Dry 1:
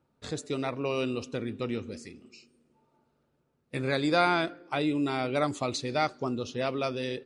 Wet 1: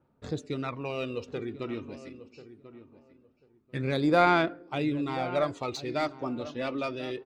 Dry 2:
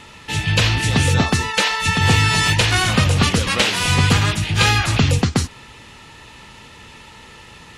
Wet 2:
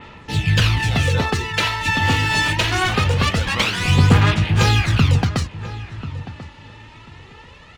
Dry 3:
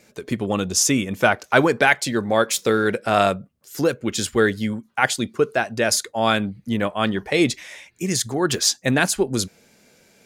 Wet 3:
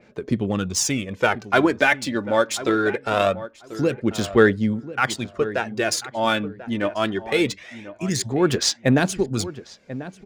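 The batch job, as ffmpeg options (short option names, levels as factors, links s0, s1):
-filter_complex "[0:a]adynamicsmooth=sensitivity=2.5:basefreq=4400,aphaser=in_gain=1:out_gain=1:delay=3.5:decay=0.5:speed=0.23:type=sinusoidal,asplit=2[s0][s1];[s1]adelay=1040,lowpass=f=1500:p=1,volume=0.2,asplit=2[s2][s3];[s3]adelay=1040,lowpass=f=1500:p=1,volume=0.2[s4];[s2][s4]amix=inputs=2:normalize=0[s5];[s0][s5]amix=inputs=2:normalize=0,adynamicequalizer=threshold=0.0316:dfrequency=4200:dqfactor=0.7:tfrequency=4200:tqfactor=0.7:attack=5:release=100:ratio=0.375:range=2:mode=cutabove:tftype=highshelf,volume=0.75"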